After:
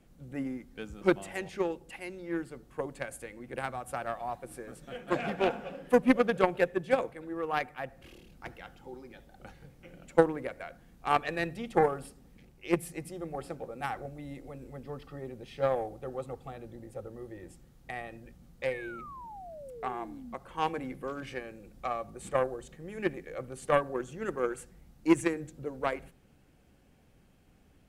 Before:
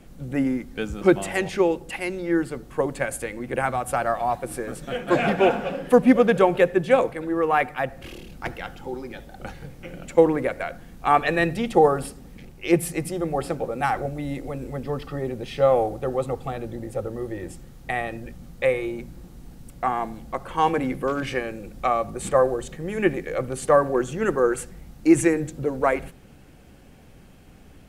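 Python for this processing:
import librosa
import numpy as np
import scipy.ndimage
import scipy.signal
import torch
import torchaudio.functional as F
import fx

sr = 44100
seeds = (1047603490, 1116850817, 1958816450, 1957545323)

y = fx.spec_paint(x, sr, seeds[0], shape='fall', start_s=18.71, length_s=1.64, low_hz=220.0, high_hz=1900.0, level_db=-32.0)
y = fx.cheby_harmonics(y, sr, harmonics=(3,), levels_db=(-13,), full_scale_db=-3.5)
y = y * librosa.db_to_amplitude(-3.5)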